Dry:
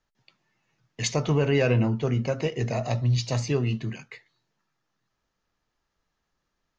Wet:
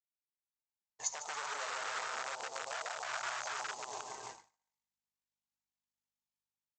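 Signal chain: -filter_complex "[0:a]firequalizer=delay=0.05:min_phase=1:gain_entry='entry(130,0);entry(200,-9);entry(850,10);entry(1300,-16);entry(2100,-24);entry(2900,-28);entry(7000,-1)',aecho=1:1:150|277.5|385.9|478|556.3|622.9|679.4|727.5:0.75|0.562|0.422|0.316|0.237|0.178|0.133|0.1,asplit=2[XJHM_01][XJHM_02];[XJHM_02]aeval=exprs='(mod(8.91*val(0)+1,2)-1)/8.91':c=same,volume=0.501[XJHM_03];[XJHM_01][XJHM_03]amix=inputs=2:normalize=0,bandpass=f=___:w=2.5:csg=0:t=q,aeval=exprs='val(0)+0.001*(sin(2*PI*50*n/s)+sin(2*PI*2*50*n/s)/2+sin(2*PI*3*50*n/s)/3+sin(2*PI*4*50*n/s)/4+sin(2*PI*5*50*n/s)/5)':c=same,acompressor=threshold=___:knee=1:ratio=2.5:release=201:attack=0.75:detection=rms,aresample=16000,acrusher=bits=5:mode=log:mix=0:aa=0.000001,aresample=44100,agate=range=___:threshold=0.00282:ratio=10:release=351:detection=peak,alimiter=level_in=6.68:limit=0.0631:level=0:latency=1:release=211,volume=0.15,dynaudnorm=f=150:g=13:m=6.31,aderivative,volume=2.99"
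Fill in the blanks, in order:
1300, 0.0112, 0.0158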